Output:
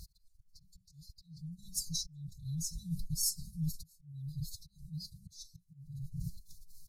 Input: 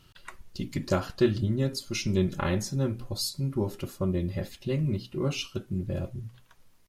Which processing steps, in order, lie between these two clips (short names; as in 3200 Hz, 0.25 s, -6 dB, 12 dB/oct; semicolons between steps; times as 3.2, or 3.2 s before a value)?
fixed phaser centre 1000 Hz, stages 4; reverse; compressor 8:1, threshold -42 dBFS, peak gain reduction 17.5 dB; reverse; auto swell 0.773 s; formant-preserving pitch shift +7.5 st; brick-wall FIR band-stop 170–3500 Hz; gain +14 dB